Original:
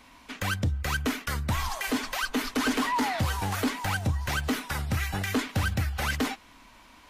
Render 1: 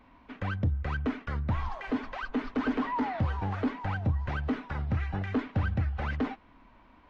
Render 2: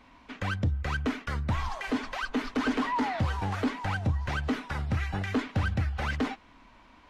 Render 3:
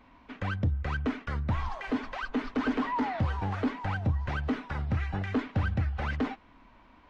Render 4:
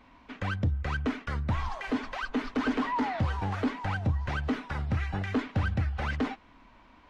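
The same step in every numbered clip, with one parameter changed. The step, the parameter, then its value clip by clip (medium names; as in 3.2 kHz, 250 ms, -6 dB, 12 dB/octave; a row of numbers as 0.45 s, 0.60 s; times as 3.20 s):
tape spacing loss, at 10 kHz: 45 dB, 20 dB, 37 dB, 29 dB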